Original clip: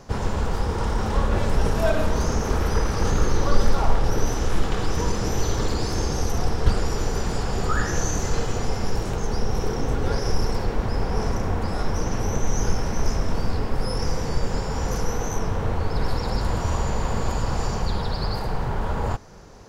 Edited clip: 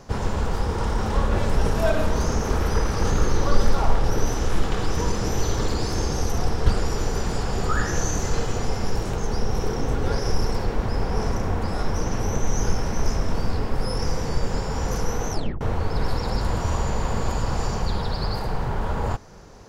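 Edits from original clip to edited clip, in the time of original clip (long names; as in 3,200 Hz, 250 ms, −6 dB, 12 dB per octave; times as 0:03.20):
0:15.31: tape stop 0.30 s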